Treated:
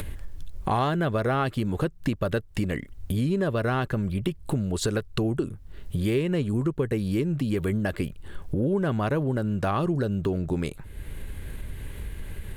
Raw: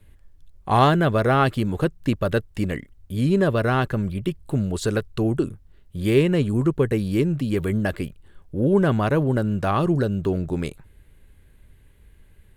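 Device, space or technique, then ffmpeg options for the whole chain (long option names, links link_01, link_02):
upward and downward compression: -af "acompressor=mode=upward:threshold=-22dB:ratio=2.5,acompressor=threshold=-25dB:ratio=4,volume=2dB"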